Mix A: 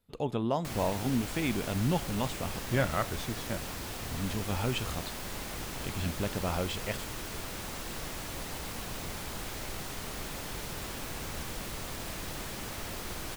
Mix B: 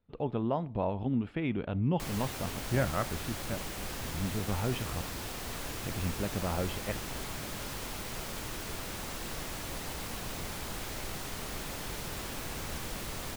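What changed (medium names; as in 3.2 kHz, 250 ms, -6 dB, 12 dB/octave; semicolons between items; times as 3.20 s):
speech: add distance through air 380 m; background: entry +1.35 s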